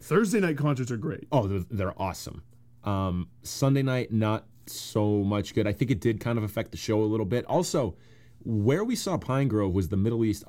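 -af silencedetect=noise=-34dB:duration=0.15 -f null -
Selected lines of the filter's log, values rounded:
silence_start: 2.39
silence_end: 2.86 | silence_duration: 0.48
silence_start: 3.23
silence_end: 3.46 | silence_duration: 0.22
silence_start: 4.39
silence_end: 4.68 | silence_duration: 0.29
silence_start: 7.91
silence_end: 8.46 | silence_duration: 0.55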